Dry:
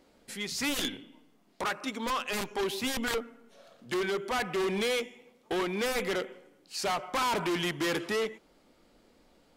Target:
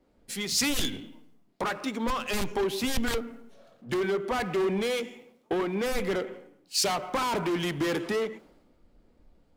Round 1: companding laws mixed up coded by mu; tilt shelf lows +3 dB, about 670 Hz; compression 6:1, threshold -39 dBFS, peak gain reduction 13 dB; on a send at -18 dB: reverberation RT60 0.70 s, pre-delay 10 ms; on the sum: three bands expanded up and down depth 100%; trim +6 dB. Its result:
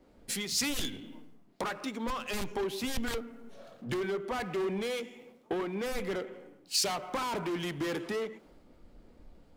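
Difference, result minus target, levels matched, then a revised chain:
compression: peak gain reduction +5.5 dB
companding laws mixed up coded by mu; tilt shelf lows +3 dB, about 670 Hz; compression 6:1, threshold -32.5 dBFS, peak gain reduction 7.5 dB; on a send at -18 dB: reverberation RT60 0.70 s, pre-delay 10 ms; on the sum: three bands expanded up and down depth 100%; trim +6 dB

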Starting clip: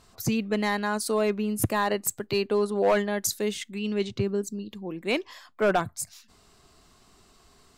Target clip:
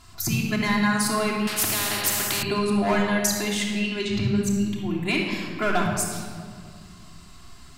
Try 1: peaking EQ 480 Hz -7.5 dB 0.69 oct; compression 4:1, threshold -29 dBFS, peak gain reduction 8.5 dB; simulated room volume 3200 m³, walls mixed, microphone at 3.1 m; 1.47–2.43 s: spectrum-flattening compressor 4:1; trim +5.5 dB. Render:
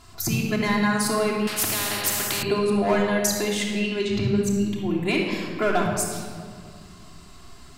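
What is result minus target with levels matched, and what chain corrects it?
500 Hz band +3.5 dB
peaking EQ 480 Hz -18 dB 0.69 oct; compression 4:1, threshold -29 dBFS, peak gain reduction 8 dB; simulated room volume 3200 m³, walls mixed, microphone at 3.1 m; 1.47–2.43 s: spectrum-flattening compressor 4:1; trim +5.5 dB

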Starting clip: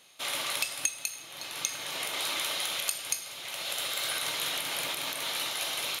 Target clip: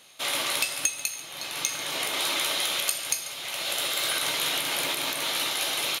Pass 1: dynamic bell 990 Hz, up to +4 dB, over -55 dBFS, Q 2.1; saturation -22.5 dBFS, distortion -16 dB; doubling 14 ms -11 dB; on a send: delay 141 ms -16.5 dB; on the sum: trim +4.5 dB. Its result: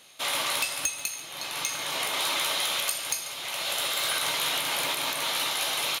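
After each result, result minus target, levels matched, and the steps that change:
saturation: distortion +10 dB; 250 Hz band -2.5 dB
change: saturation -14 dBFS, distortion -25 dB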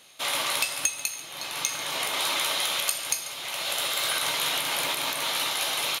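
250 Hz band -3.0 dB
change: dynamic bell 330 Hz, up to +4 dB, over -55 dBFS, Q 2.1

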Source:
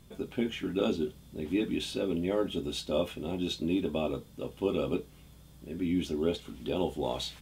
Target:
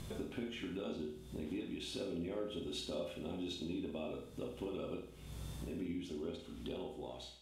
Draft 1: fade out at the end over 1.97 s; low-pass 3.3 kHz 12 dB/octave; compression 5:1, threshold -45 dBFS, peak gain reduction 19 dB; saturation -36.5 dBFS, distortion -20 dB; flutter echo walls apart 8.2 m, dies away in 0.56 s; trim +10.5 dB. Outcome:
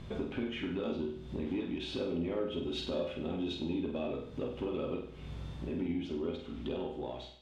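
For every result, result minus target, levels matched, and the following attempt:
8 kHz band -12.5 dB; compression: peak gain reduction -7 dB
fade out at the end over 1.97 s; low-pass 12 kHz 12 dB/octave; compression 5:1, threshold -45 dBFS, peak gain reduction 19 dB; saturation -36.5 dBFS, distortion -20 dB; flutter echo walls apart 8.2 m, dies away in 0.56 s; trim +10.5 dB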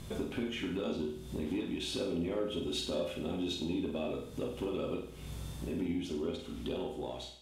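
compression: peak gain reduction -7 dB
fade out at the end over 1.97 s; low-pass 12 kHz 12 dB/octave; compression 5:1, threshold -54 dBFS, peak gain reduction 26.5 dB; saturation -36.5 dBFS, distortion -32 dB; flutter echo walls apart 8.2 m, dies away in 0.56 s; trim +10.5 dB

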